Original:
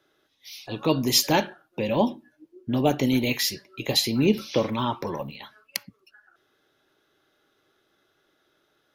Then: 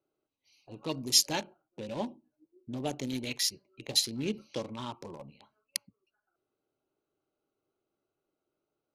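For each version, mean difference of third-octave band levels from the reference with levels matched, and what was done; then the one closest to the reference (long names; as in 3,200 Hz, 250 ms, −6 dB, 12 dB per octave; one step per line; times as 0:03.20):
5.0 dB: adaptive Wiener filter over 25 samples
Butterworth low-pass 11,000 Hz 36 dB per octave
first-order pre-emphasis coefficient 0.8
level +1 dB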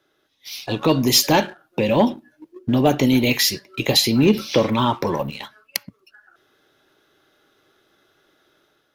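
2.0 dB: automatic gain control gain up to 6 dB
leveller curve on the samples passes 1
in parallel at +2.5 dB: downward compressor, threshold −25 dBFS, peak gain reduction 16 dB
on the sum: level −4.5 dB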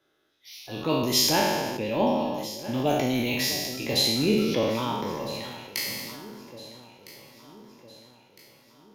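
10.5 dB: peak hold with a decay on every bin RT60 1.13 s
delay that swaps between a low-pass and a high-pass 654 ms, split 830 Hz, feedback 69%, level −14 dB
level that may fall only so fast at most 31 dB per second
level −5.5 dB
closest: second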